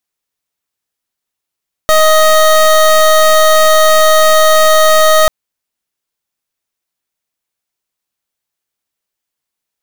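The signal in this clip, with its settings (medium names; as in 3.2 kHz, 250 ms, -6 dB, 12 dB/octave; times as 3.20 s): pulse 627 Hz, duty 24% -7 dBFS 3.39 s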